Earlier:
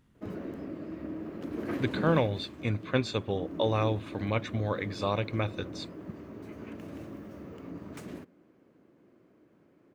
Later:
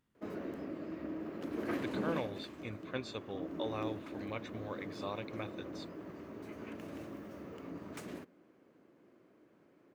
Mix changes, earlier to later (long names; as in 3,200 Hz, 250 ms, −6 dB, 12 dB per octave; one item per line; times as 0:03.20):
speech −10.0 dB
master: add low-shelf EQ 220 Hz −8.5 dB